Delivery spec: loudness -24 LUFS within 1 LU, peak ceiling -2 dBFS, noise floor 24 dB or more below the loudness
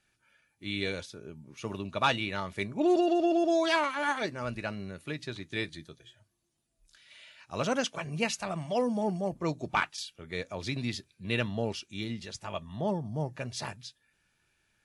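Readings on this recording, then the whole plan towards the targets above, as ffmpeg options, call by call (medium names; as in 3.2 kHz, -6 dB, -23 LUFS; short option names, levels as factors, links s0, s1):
loudness -32.0 LUFS; peak level -12.0 dBFS; loudness target -24.0 LUFS
-> -af "volume=2.51"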